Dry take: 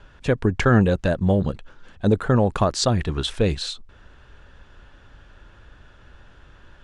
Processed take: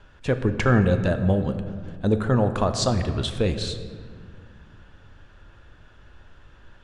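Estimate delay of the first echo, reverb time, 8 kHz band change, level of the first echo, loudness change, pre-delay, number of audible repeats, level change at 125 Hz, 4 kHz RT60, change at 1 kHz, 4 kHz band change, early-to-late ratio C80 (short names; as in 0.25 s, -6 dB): none, 2.1 s, -2.5 dB, none, -2.0 dB, 8 ms, none, -1.0 dB, 1.1 s, -2.5 dB, -2.5 dB, 10.5 dB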